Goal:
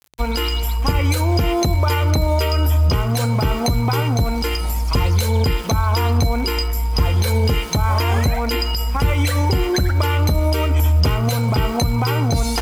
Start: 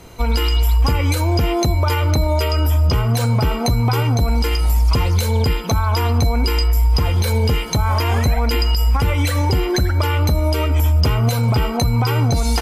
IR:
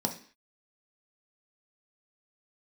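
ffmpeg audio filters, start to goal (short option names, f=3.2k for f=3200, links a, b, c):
-af "aeval=exprs='val(0)*gte(abs(val(0)),0.0251)':c=same,bandreject=f=60:t=h:w=6,bandreject=f=120:t=h:w=6"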